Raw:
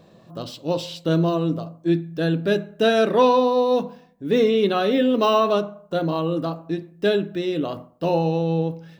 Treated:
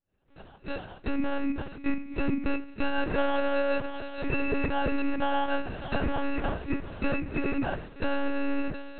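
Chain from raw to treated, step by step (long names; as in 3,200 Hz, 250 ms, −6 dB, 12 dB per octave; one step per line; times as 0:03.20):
fade in at the beginning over 2.17 s
feedback echo with a long and a short gap by turns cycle 1,008 ms, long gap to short 1.5 to 1, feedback 32%, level −18.5 dB
downward compressor 6 to 1, threshold −22 dBFS, peak gain reduction 10 dB
decimation without filtering 20×
phase-vocoder pitch shift with formants kept −10.5 semitones
treble cut that deepens with the level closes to 2,400 Hz, closed at −24.5 dBFS
one-pitch LPC vocoder at 8 kHz 280 Hz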